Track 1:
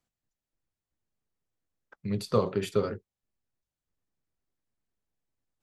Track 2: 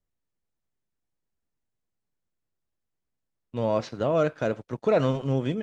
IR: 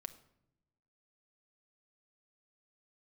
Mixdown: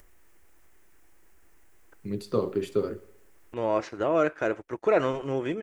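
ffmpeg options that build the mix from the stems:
-filter_complex "[0:a]volume=-5.5dB,asplit=2[link_01][link_02];[link_02]volume=-20dB[link_03];[1:a]acompressor=mode=upward:threshold=-37dB:ratio=2.5,equalizer=frequency=125:width_type=o:width=1:gain=-11,equalizer=frequency=250:width_type=o:width=1:gain=-12,equalizer=frequency=500:width_type=o:width=1:gain=-4,equalizer=frequency=2000:width_type=o:width=1:gain=5,equalizer=frequency=4000:width_type=o:width=1:gain=-10,volume=2dB[link_04];[link_03]aecho=0:1:64|128|192|256|320|384|448|512|576:1|0.59|0.348|0.205|0.121|0.0715|0.0422|0.0249|0.0147[link_05];[link_01][link_04][link_05]amix=inputs=3:normalize=0,equalizer=frequency=330:width_type=o:width=0.73:gain=12"

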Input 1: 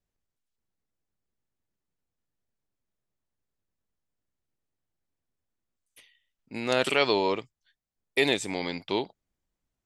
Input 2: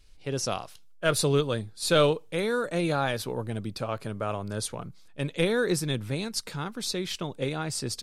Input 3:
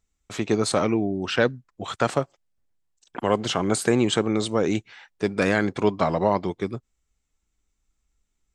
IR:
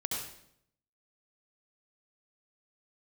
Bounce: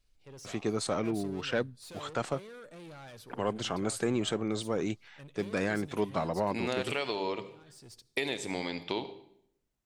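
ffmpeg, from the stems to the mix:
-filter_complex "[0:a]bandreject=frequency=99.27:width_type=h:width=4,bandreject=frequency=198.54:width_type=h:width=4,bandreject=frequency=297.81:width_type=h:width=4,bandreject=frequency=397.08:width_type=h:width=4,bandreject=frequency=496.35:width_type=h:width=4,acompressor=threshold=-29dB:ratio=6,volume=-1.5dB,asplit=3[link_01][link_02][link_03];[link_02]volume=-13.5dB[link_04];[1:a]asoftclip=type=tanh:threshold=-30dB,volume=-15.5dB,asplit=2[link_05][link_06];[link_06]volume=-22dB[link_07];[2:a]acontrast=80,adelay=150,volume=-15.5dB[link_08];[link_03]apad=whole_len=358186[link_09];[link_05][link_09]sidechaincompress=threshold=-50dB:ratio=8:attack=16:release=446[link_10];[3:a]atrim=start_sample=2205[link_11];[link_04][link_07]amix=inputs=2:normalize=0[link_12];[link_12][link_11]afir=irnorm=-1:irlink=0[link_13];[link_01][link_10][link_08][link_13]amix=inputs=4:normalize=0"

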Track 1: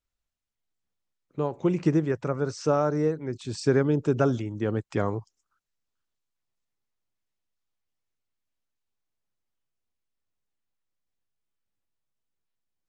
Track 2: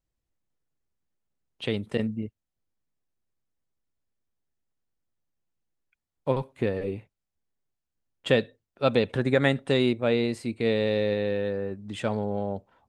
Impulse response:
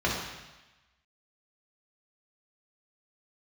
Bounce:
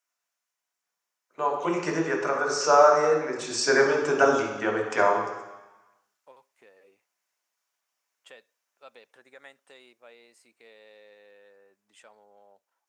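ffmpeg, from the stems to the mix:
-filter_complex "[0:a]dynaudnorm=framelen=370:gausssize=11:maxgain=3.5dB,volume=0dB,asplit=2[link_01][link_02];[link_02]volume=-4dB[link_03];[1:a]acompressor=threshold=-33dB:ratio=1.5,volume=-15dB[link_04];[2:a]atrim=start_sample=2205[link_05];[link_03][link_05]afir=irnorm=-1:irlink=0[link_06];[link_01][link_04][link_06]amix=inputs=3:normalize=0,highpass=790,aexciter=amount=5.5:drive=2.4:freq=5400,aemphasis=mode=reproduction:type=50kf"

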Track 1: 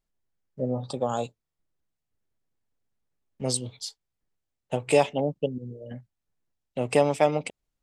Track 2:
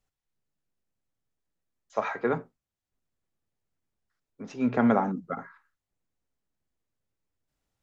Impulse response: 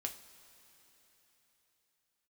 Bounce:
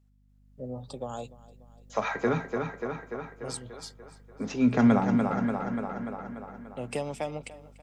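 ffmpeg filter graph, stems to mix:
-filter_complex "[0:a]volume=-18dB,asplit=2[link_01][link_02];[link_02]volume=-21dB[link_03];[1:a]volume=-5dB,asplit=4[link_04][link_05][link_06][link_07];[link_05]volume=-8dB[link_08];[link_06]volume=-5dB[link_09];[link_07]apad=whole_len=345280[link_10];[link_01][link_10]sidechaincompress=threshold=-47dB:ratio=8:attack=16:release=1010[link_11];[2:a]atrim=start_sample=2205[link_12];[link_08][link_12]afir=irnorm=-1:irlink=0[link_13];[link_03][link_09]amix=inputs=2:normalize=0,aecho=0:1:292|584|876|1168|1460|1752|2044|2336:1|0.56|0.314|0.176|0.0983|0.0551|0.0308|0.0173[link_14];[link_11][link_04][link_13][link_14]amix=inputs=4:normalize=0,acrossover=split=200|3000[link_15][link_16][link_17];[link_16]acompressor=threshold=-43dB:ratio=2[link_18];[link_15][link_18][link_17]amix=inputs=3:normalize=0,aeval=exprs='val(0)+0.000708*(sin(2*PI*50*n/s)+sin(2*PI*2*50*n/s)/2+sin(2*PI*3*50*n/s)/3+sin(2*PI*4*50*n/s)/4+sin(2*PI*5*50*n/s)/5)':channel_layout=same,dynaudnorm=framelen=120:gausssize=9:maxgain=10.5dB"

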